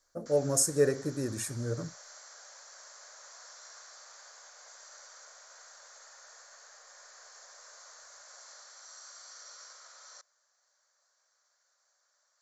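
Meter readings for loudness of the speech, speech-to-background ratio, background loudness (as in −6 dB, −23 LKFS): −30.0 LKFS, 20.0 dB, −50.0 LKFS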